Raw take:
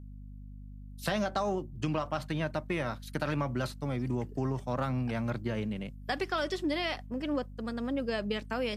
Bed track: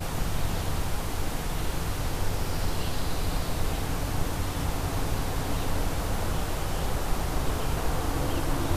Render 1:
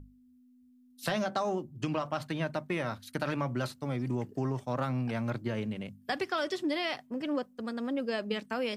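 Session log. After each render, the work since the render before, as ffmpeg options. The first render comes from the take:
-af "bandreject=f=50:t=h:w=6,bandreject=f=100:t=h:w=6,bandreject=f=150:t=h:w=6,bandreject=f=200:t=h:w=6"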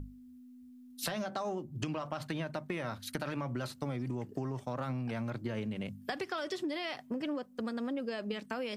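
-filter_complex "[0:a]asplit=2[a][b];[b]alimiter=level_in=2dB:limit=-24dB:level=0:latency=1,volume=-2dB,volume=3dB[c];[a][c]amix=inputs=2:normalize=0,acompressor=threshold=-34dB:ratio=6"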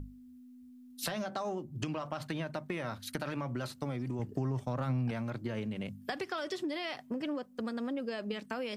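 -filter_complex "[0:a]asettb=1/sr,asplit=3[a][b][c];[a]atrim=end=4.194[d];[b]atrim=start=4.19:end=5.11,asetpts=PTS-STARTPTS,afade=t=in:d=0.004:c=qsin,afade=t=out:st=0.916:d=0.004:c=qsin,lowshelf=f=130:g=11.5[e];[c]atrim=start=5.106[f];[d][e]acrossfade=d=0.004:c1=hsin:c2=qsin[g];[g][f]acrossfade=d=0.004:c1=qsin:c2=hsin"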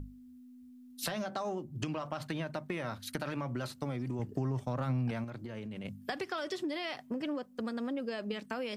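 -filter_complex "[0:a]asettb=1/sr,asplit=3[a][b][c];[a]atrim=end=5.244[d];[b]atrim=start=5.24:end=5.85,asetpts=PTS-STARTPTS,afade=t=in:d=0.004:c=qsin,afade=t=out:st=0.606:d=0.004:c=qsin,acompressor=threshold=-38dB:ratio=6:attack=3.2:release=140:knee=1:detection=peak[e];[c]atrim=start=5.846[f];[d][e]acrossfade=d=0.004:c1=hsin:c2=qsin[g];[g][f]acrossfade=d=0.004:c1=qsin:c2=hsin"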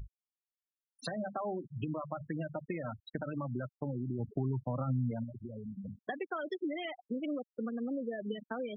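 -af "afftfilt=real='re*gte(hypot(re,im),0.0355)':imag='im*gte(hypot(re,im),0.0355)':win_size=1024:overlap=0.75"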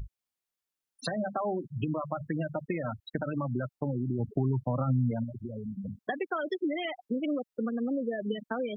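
-af "volume=5.5dB"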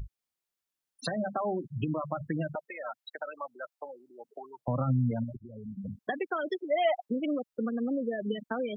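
-filter_complex "[0:a]asettb=1/sr,asplit=3[a][b][c];[a]atrim=end=2.554[d];[b]atrim=start=2.55:end=4.68,asetpts=PTS-STARTPTS,afade=t=in:d=0.004:c=qsin,afade=t=out:st=2.126:d=0.004:c=qsin,highpass=f=580:w=0.5412,highpass=f=580:w=1.3066[e];[c]atrim=start=4.676[f];[d][e]acrossfade=d=0.004:c1=hsin:c2=qsin[g];[g][f]acrossfade=d=0.004:c1=qsin:c2=hsin,asettb=1/sr,asplit=3[h][i][j];[h]atrim=end=6.604[k];[i]atrim=start=6.6:end=7.07,asetpts=PTS-STARTPTS,afade=t=in:d=0.004:c=qsin,afade=t=out:st=0.466:d=0.004:c=qsin,highpass=f=650:t=q:w=4.3[l];[j]atrim=start=7.066[m];[k][l]acrossfade=d=0.004:c1=hsin:c2=qsin[n];[n][m]acrossfade=d=0.004:c1=qsin:c2=hsin,asplit=2[o][p];[o]atrim=end=5.37,asetpts=PTS-STARTPTS,afade=t=out:st=5.366:d=0.004:c=hsin:silence=0.223872[q];[p]atrim=start=5.37,asetpts=PTS-STARTPTS,afade=t=in:d=0.55:silence=0.223872[r];[q][r]concat=n=2:v=0:a=1"

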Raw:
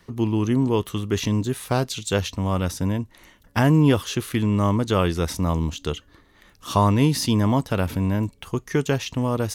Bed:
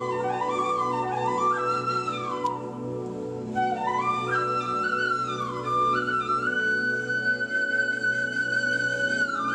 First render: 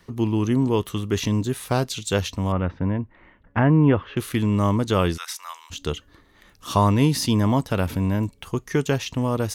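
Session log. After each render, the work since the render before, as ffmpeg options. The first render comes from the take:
-filter_complex "[0:a]asettb=1/sr,asplit=3[a][b][c];[a]atrim=end=2.524[d];[b]atrim=start=2.52:end=4.17,asetpts=PTS-STARTPTS,afade=t=in:d=0.004:c=qsin,afade=t=out:st=1.646:d=0.004:c=qsin,lowpass=f=2.3k:w=0.5412,lowpass=f=2.3k:w=1.3066[e];[c]atrim=start=4.166[f];[d][e]acrossfade=d=0.004:c1=hsin:c2=qsin[g];[g][f]acrossfade=d=0.004:c1=qsin:c2=hsin,asplit=3[h][i][j];[h]afade=t=out:st=5.16:d=0.02[k];[i]highpass=f=1.2k:w=0.5412,highpass=f=1.2k:w=1.3066,afade=t=in:st=5.16:d=0.02,afade=t=out:st=5.7:d=0.02[l];[j]afade=t=in:st=5.7:d=0.02[m];[k][l][m]amix=inputs=3:normalize=0"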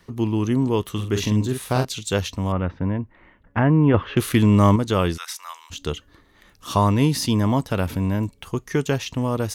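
-filter_complex "[0:a]asettb=1/sr,asplit=3[a][b][c];[a]atrim=end=0.914[d];[b]atrim=start=0.91:end=1.85,asetpts=PTS-STARTPTS,afade=t=in:d=0.004:c=qsin,afade=t=out:st=0.936:d=0.004:c=qsin,asplit=2[e][f];[f]adelay=47,volume=-6.5dB[g];[e][g]amix=inputs=2:normalize=0,atrim=end_sample=41454[h];[c]atrim=start=1.846[i];[d][h]acrossfade=d=0.004:c1=hsin:c2=qsin[j];[j][i]acrossfade=d=0.004:c1=qsin:c2=hsin,asettb=1/sr,asplit=3[k][l][m];[k]atrim=end=3.944[n];[l]atrim=start=3.94:end=4.76,asetpts=PTS-STARTPTS,afade=t=in:d=0.004:c=qsin,afade=t=out:st=0.816:d=0.004:c=qsin,acontrast=50[o];[m]atrim=start=4.756[p];[n][o]acrossfade=d=0.004:c1=hsin:c2=qsin[q];[q][p]acrossfade=d=0.004:c1=qsin:c2=hsin"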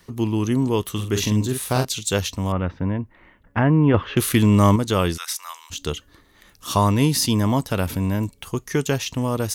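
-af "highshelf=f=5k:g=8.5"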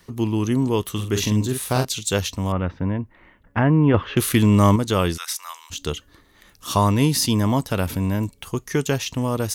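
-af anull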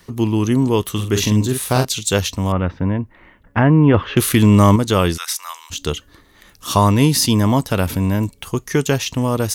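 -af "volume=4.5dB,alimiter=limit=-3dB:level=0:latency=1"

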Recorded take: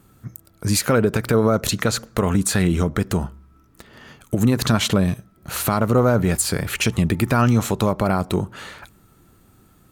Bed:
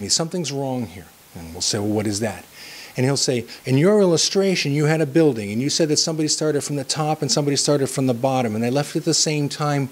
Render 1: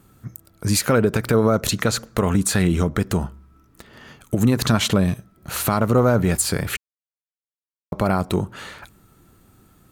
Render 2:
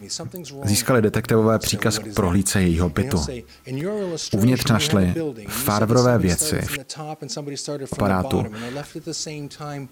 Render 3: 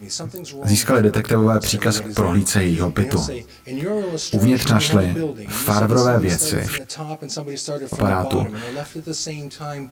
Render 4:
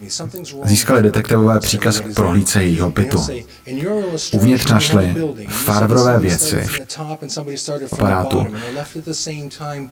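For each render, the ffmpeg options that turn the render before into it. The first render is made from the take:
-filter_complex "[0:a]asplit=3[a][b][c];[a]atrim=end=6.77,asetpts=PTS-STARTPTS,afade=t=out:st=6.766:d=0.004:c=hsin[d];[b]atrim=start=6.77:end=7.92,asetpts=PTS-STARTPTS,volume=0[e];[c]atrim=start=7.92,asetpts=PTS-STARTPTS,afade=t=in:d=0.004:c=hsin[f];[d][e][f]concat=n=3:v=0:a=1"
-filter_complex "[1:a]volume=-10.5dB[a];[0:a][a]amix=inputs=2:normalize=0"
-filter_complex "[0:a]asplit=2[a][b];[b]adelay=19,volume=-2.5dB[c];[a][c]amix=inputs=2:normalize=0,asplit=2[d][e];[e]adelay=186.6,volume=-23dB,highshelf=f=4k:g=-4.2[f];[d][f]amix=inputs=2:normalize=0"
-af "volume=3.5dB,alimiter=limit=-1dB:level=0:latency=1"

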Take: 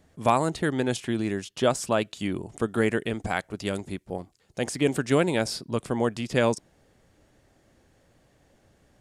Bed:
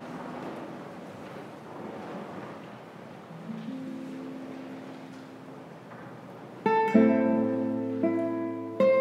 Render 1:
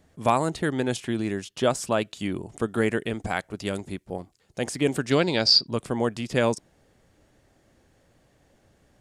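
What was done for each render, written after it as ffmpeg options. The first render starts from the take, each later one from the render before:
-filter_complex "[0:a]asettb=1/sr,asplit=3[a][b][c];[a]atrim=end=5.114[d];[b]atrim=start=5.11:end=5.67,asetpts=PTS-STARTPTS,afade=t=in:d=0.004:c=qsin,afade=t=out:st=0.556:d=0.004:c=qsin,lowpass=f=4.7k:t=q:w=13[e];[c]atrim=start=5.666[f];[d][e]acrossfade=d=0.004:c1=hsin:c2=qsin[g];[g][f]acrossfade=d=0.004:c1=qsin:c2=hsin"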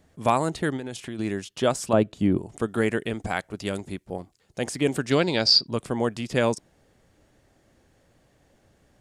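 -filter_complex "[0:a]asplit=3[a][b][c];[a]afade=t=out:st=0.76:d=0.02[d];[b]acompressor=threshold=-30dB:ratio=6:attack=3.2:release=140:knee=1:detection=peak,afade=t=in:st=0.76:d=0.02,afade=t=out:st=1.18:d=0.02[e];[c]afade=t=in:st=1.18:d=0.02[f];[d][e][f]amix=inputs=3:normalize=0,asettb=1/sr,asplit=3[g][h][i];[g]atrim=end=1.934[j];[h]atrim=start=1.93:end=2.38,asetpts=PTS-STARTPTS,afade=t=in:d=0.004:c=qsin,afade=t=out:st=0.446:d=0.004:c=qsin,tiltshelf=f=1.1k:g=9[k];[i]atrim=start=2.376[l];[j][k]acrossfade=d=0.004:c1=hsin:c2=qsin[m];[m][l]acrossfade=d=0.004:c1=qsin:c2=hsin"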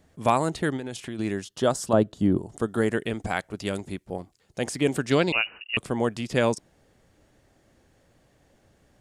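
-filter_complex "[0:a]asettb=1/sr,asplit=3[a][b][c];[a]atrim=end=1.434[d];[b]atrim=start=1.43:end=2.94,asetpts=PTS-STARTPTS,afade=t=in:d=0.004:c=qsin,afade=t=out:st=1.506:d=0.004:c=qsin,equalizer=f=2.4k:w=3.1:g=-10.5[e];[c]atrim=start=2.936[f];[d][e]acrossfade=d=0.004:c1=hsin:c2=qsin[g];[g][f]acrossfade=d=0.004:c1=qsin:c2=hsin,asettb=1/sr,asplit=3[h][i][j];[h]atrim=end=5.324[k];[i]atrim=start=5.32:end=5.77,asetpts=PTS-STARTPTS,afade=t=in:d=0.004:c=qsin,afade=t=out:st=0.446:d=0.004:c=qsin,lowpass=f=2.6k:t=q:w=0.5098,lowpass=f=2.6k:t=q:w=0.6013,lowpass=f=2.6k:t=q:w=0.9,lowpass=f=2.6k:t=q:w=2.563,afreqshift=-3000[l];[j]atrim=start=5.766[m];[k][l]acrossfade=d=0.004:c1=hsin:c2=qsin[n];[n][m]acrossfade=d=0.004:c1=qsin:c2=hsin"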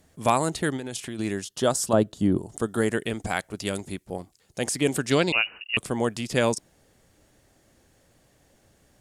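-af "aemphasis=mode=production:type=cd"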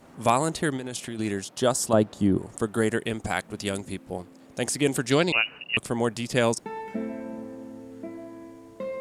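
-filter_complex "[1:a]volume=-11.5dB[a];[0:a][a]amix=inputs=2:normalize=0"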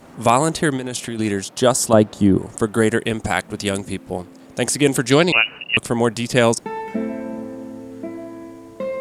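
-af "volume=7.5dB,alimiter=limit=-1dB:level=0:latency=1"

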